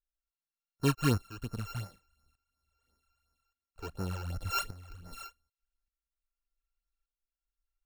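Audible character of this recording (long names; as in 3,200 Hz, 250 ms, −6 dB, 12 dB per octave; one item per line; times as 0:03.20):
a buzz of ramps at a fixed pitch in blocks of 32 samples
phaser sweep stages 12, 2.8 Hz, lowest notch 180–3,300 Hz
tremolo saw up 0.85 Hz, depth 80%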